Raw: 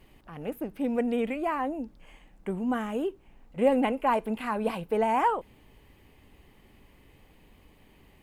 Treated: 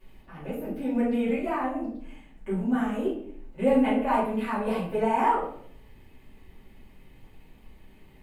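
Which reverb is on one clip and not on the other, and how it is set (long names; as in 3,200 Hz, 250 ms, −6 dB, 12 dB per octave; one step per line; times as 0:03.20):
rectangular room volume 91 cubic metres, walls mixed, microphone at 2.5 metres
level −10 dB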